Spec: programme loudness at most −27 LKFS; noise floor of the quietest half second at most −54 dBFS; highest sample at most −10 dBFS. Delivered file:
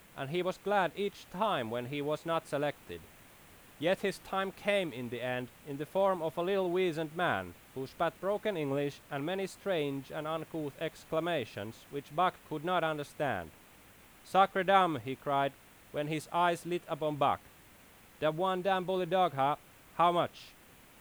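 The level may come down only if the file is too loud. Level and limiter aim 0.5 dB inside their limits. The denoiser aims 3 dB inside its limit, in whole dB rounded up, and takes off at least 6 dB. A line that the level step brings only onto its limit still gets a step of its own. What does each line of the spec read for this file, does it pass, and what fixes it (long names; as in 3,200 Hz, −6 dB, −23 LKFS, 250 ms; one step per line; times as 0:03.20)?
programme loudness −33.5 LKFS: in spec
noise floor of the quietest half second −58 dBFS: in spec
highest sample −12.0 dBFS: in spec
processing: no processing needed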